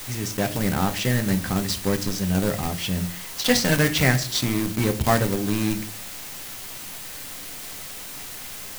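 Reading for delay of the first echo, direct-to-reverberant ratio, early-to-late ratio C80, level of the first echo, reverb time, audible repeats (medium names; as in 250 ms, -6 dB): no echo, 6.5 dB, 20.0 dB, no echo, 0.45 s, no echo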